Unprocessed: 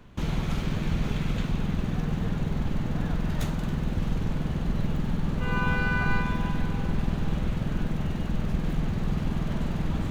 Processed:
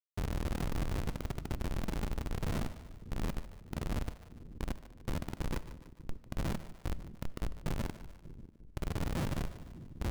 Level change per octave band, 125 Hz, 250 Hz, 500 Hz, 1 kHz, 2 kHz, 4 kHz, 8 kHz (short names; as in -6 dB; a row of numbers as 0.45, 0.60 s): -11.5 dB, -12.5 dB, -7.5 dB, -10.5 dB, -15.5 dB, -8.0 dB, n/a